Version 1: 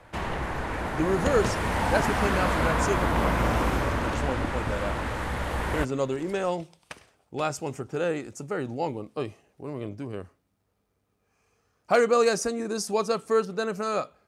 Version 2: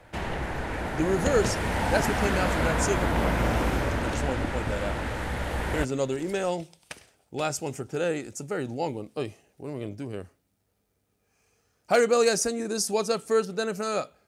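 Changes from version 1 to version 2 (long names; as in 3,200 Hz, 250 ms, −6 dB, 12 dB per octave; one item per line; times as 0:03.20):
speech: add high-shelf EQ 4,900 Hz +7.5 dB
master: add parametric band 1,100 Hz −6.5 dB 0.38 octaves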